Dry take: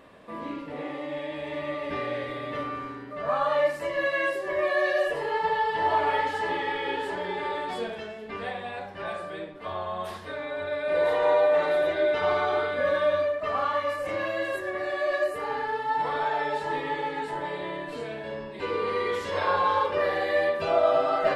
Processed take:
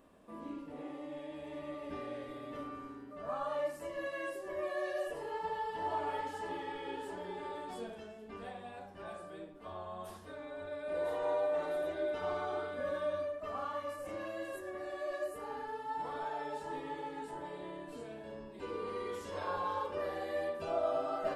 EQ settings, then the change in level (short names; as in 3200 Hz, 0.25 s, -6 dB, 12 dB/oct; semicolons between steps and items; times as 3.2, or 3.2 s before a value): ten-band EQ 125 Hz -10 dB, 500 Hz -7 dB, 1000 Hz -5 dB, 2000 Hz -12 dB, 4000 Hz -9 dB; -3.5 dB